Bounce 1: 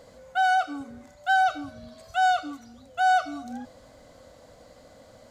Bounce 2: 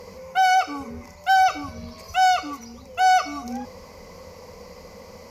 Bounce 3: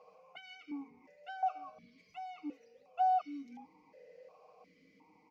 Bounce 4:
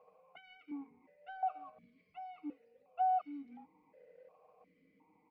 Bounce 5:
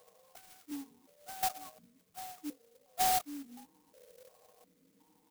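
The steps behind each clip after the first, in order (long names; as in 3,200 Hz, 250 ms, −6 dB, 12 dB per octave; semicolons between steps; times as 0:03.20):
EQ curve with evenly spaced ripples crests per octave 0.82, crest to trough 14 dB; level +8 dB
comb filter 6.5 ms, depth 64%; downward compressor 4 to 1, threshold −19 dBFS, peak gain reduction 8.5 dB; formant filter that steps through the vowels 2.8 Hz; level −7.5 dB
in parallel at −8 dB: dead-zone distortion −56 dBFS; on the sum: high-frequency loss of the air 390 metres; level −3.5 dB
converter with an unsteady clock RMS 0.14 ms; level +2 dB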